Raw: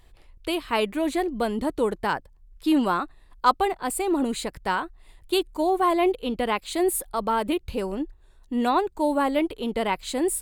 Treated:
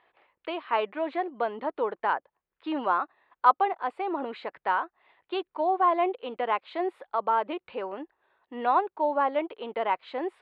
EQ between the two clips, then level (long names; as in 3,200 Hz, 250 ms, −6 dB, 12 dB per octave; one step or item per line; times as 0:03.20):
dynamic equaliser 2,100 Hz, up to −5 dB, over −38 dBFS, Q 0.93
band-pass filter 720–3,000 Hz
high-frequency loss of the air 410 metres
+5.0 dB